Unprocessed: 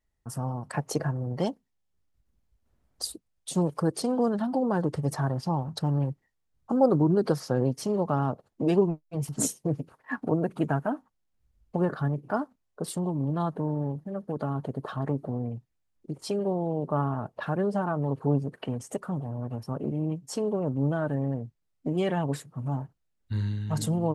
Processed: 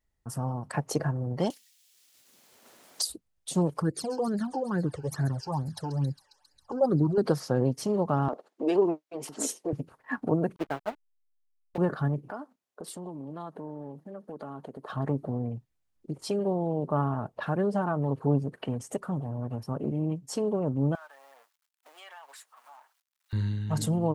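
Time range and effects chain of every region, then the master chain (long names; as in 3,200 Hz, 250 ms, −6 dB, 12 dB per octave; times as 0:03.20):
0:01.50–0:03.09: high-pass filter 390 Hz + multiband upward and downward compressor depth 100%
0:03.82–0:07.18: delay with a high-pass on its return 135 ms, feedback 77%, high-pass 2,700 Hz, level −11.5 dB + all-pass phaser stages 12, 2.3 Hz, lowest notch 190–1,100 Hz
0:08.28–0:09.73: high-pass filter 290 Hz 24 dB per octave + high-shelf EQ 9,300 Hz −11.5 dB + transient designer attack 0 dB, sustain +7 dB
0:10.56–0:11.78: hold until the input has moved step −27.5 dBFS + three-way crossover with the lows and the highs turned down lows −14 dB, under 300 Hz, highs −16 dB, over 3,300 Hz + expander for the loud parts 2.5 to 1, over −42 dBFS
0:12.30–0:14.90: high-pass filter 240 Hz + downward compressor 2 to 1, threshold −41 dBFS
0:20.95–0:23.33: mu-law and A-law mismatch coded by mu + high-pass filter 900 Hz 24 dB per octave + downward compressor 2 to 1, threshold −53 dBFS
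whole clip: no processing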